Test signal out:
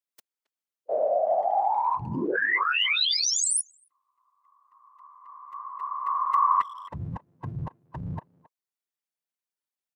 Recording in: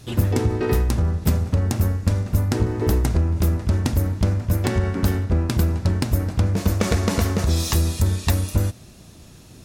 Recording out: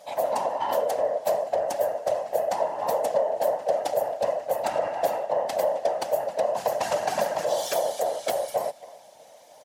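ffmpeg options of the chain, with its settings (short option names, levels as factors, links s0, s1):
-filter_complex "[0:a]afftfilt=real='real(if(lt(b,1008),b+24*(1-2*mod(floor(b/24),2)),b),0)':imag='imag(if(lt(b,1008),b+24*(1-2*mod(floor(b/24),2)),b),0)':win_size=2048:overlap=0.75,afftfilt=real='hypot(re,im)*cos(2*PI*random(0))':imag='hypot(re,im)*sin(2*PI*random(1))':win_size=512:overlap=0.75,highpass=180,asplit=2[s0][s1];[s1]adelay=270,highpass=300,lowpass=3400,asoftclip=type=hard:threshold=0.119,volume=0.126[s2];[s0][s2]amix=inputs=2:normalize=0"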